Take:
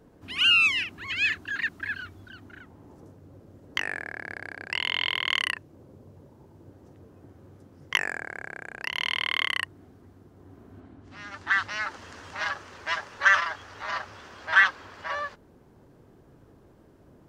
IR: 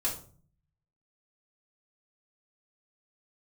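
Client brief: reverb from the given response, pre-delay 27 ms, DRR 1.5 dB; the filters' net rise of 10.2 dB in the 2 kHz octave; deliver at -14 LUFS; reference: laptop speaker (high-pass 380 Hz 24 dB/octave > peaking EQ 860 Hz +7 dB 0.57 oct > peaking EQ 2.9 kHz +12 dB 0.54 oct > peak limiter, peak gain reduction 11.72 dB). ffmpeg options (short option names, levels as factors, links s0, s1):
-filter_complex "[0:a]equalizer=f=2000:t=o:g=7,asplit=2[s0][s1];[1:a]atrim=start_sample=2205,adelay=27[s2];[s1][s2]afir=irnorm=-1:irlink=0,volume=0.473[s3];[s0][s3]amix=inputs=2:normalize=0,highpass=f=380:w=0.5412,highpass=f=380:w=1.3066,equalizer=f=860:t=o:w=0.57:g=7,equalizer=f=2900:t=o:w=0.54:g=12,volume=1.5,alimiter=limit=0.794:level=0:latency=1"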